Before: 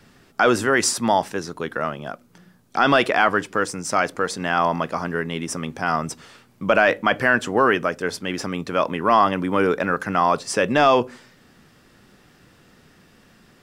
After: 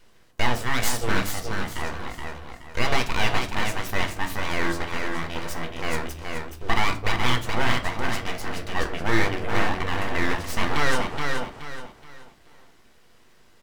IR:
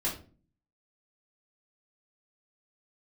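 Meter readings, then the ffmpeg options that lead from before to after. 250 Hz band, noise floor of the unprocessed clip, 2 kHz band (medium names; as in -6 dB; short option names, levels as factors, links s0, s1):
-6.0 dB, -55 dBFS, -4.0 dB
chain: -filter_complex "[0:a]aecho=1:1:424|848|1272|1696:0.596|0.191|0.061|0.0195,aeval=exprs='abs(val(0))':c=same,asplit=2[s0][s1];[1:a]atrim=start_sample=2205[s2];[s1][s2]afir=irnorm=-1:irlink=0,volume=0.355[s3];[s0][s3]amix=inputs=2:normalize=0,volume=0.473"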